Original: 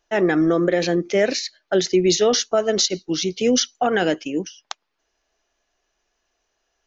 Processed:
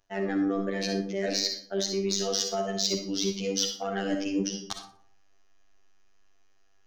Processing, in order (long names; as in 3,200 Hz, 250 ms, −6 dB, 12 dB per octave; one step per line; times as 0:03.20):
phases set to zero 98.1 Hz
reversed playback
downward compressor 10 to 1, threshold −27 dBFS, peak gain reduction 14 dB
reversed playback
soft clipping −17.5 dBFS, distortion −19 dB
low-shelf EQ 160 Hz +9.5 dB
delay with a high-pass on its return 60 ms, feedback 33%, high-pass 4,300 Hz, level −10 dB
dynamic equaliser 5,000 Hz, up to +7 dB, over −48 dBFS, Q 1.1
on a send at −4 dB: convolution reverb RT60 0.60 s, pre-delay 15 ms